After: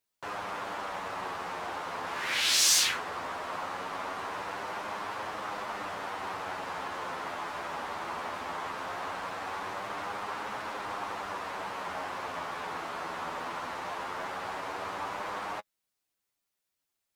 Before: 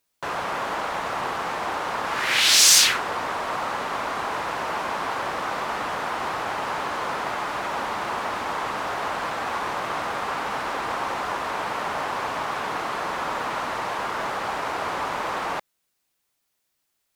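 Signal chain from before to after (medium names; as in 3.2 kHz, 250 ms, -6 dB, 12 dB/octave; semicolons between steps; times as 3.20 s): flange 0.19 Hz, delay 9.4 ms, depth 2.8 ms, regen +18%; trim -5.5 dB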